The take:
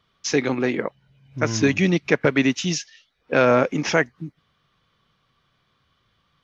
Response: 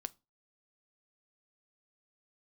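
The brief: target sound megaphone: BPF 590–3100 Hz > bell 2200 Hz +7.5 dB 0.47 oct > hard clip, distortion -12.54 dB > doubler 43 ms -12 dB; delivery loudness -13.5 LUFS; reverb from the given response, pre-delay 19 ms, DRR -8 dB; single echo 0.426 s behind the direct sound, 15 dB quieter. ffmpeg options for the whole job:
-filter_complex "[0:a]aecho=1:1:426:0.178,asplit=2[a][b];[1:a]atrim=start_sample=2205,adelay=19[c];[b][c]afir=irnorm=-1:irlink=0,volume=11dB[d];[a][d]amix=inputs=2:normalize=0,highpass=590,lowpass=3.1k,equalizer=f=2.2k:t=o:w=0.47:g=7.5,asoftclip=type=hard:threshold=-5.5dB,asplit=2[e][f];[f]adelay=43,volume=-12dB[g];[e][g]amix=inputs=2:normalize=0,volume=2dB"

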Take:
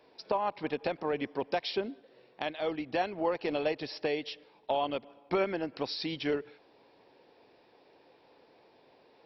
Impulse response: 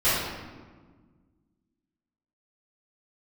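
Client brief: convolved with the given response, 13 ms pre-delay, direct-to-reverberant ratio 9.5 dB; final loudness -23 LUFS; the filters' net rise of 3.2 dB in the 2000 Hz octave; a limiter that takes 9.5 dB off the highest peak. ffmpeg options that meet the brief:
-filter_complex "[0:a]equalizer=f=2k:t=o:g=4,alimiter=limit=-23.5dB:level=0:latency=1,asplit=2[a][b];[1:a]atrim=start_sample=2205,adelay=13[c];[b][c]afir=irnorm=-1:irlink=0,volume=-26dB[d];[a][d]amix=inputs=2:normalize=0,volume=12.5dB"

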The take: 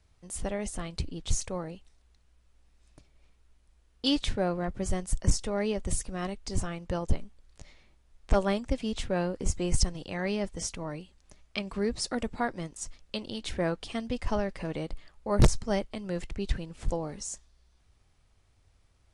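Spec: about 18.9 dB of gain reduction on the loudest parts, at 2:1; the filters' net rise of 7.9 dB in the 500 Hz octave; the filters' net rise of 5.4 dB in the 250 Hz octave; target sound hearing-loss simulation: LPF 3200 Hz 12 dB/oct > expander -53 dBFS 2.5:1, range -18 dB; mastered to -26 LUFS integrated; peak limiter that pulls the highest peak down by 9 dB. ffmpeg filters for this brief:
-af "equalizer=f=250:t=o:g=5,equalizer=f=500:t=o:g=8.5,acompressor=threshold=-48dB:ratio=2,alimiter=level_in=8.5dB:limit=-24dB:level=0:latency=1,volume=-8.5dB,lowpass=3.2k,agate=range=-18dB:threshold=-53dB:ratio=2.5,volume=18.5dB"

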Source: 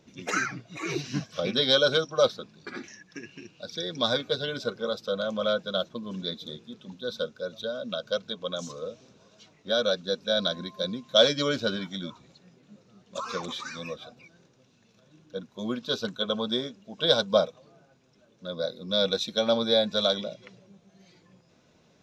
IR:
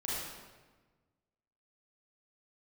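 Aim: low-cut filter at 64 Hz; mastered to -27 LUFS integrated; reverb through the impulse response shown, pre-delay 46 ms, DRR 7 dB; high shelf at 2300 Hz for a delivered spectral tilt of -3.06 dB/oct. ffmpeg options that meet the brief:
-filter_complex "[0:a]highpass=64,highshelf=f=2.3k:g=5,asplit=2[a][b];[1:a]atrim=start_sample=2205,adelay=46[c];[b][c]afir=irnorm=-1:irlink=0,volume=-11dB[d];[a][d]amix=inputs=2:normalize=0,volume=-1.5dB"

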